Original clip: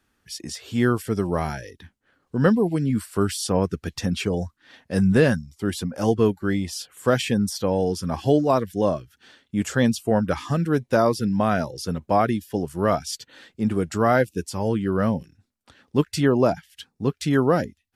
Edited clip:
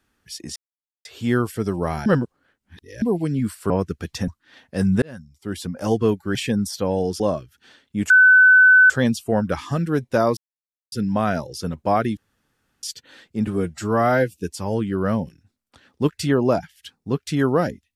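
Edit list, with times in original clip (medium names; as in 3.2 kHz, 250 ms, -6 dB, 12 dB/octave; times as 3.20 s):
0.56 s: insert silence 0.49 s
1.57–2.53 s: reverse
3.21–3.53 s: delete
4.11–4.45 s: delete
5.19–5.94 s: fade in
6.52–7.17 s: delete
8.02–8.79 s: delete
9.69 s: add tone 1.51 kHz -8 dBFS 0.80 s
11.16 s: insert silence 0.55 s
12.41–13.07 s: room tone
13.71–14.31 s: stretch 1.5×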